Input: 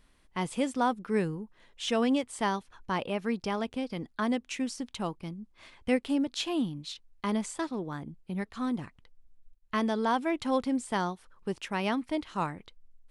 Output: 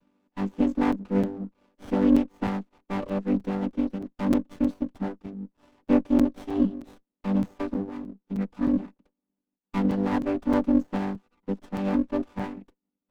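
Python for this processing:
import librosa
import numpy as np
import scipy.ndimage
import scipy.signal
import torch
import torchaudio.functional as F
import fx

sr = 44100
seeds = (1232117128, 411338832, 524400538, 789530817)

y = fx.chord_vocoder(x, sr, chord='major triad', root=55)
y = fx.buffer_crackle(y, sr, first_s=0.92, period_s=0.31, block=256, kind='zero')
y = fx.running_max(y, sr, window=17)
y = y * librosa.db_to_amplitude(6.5)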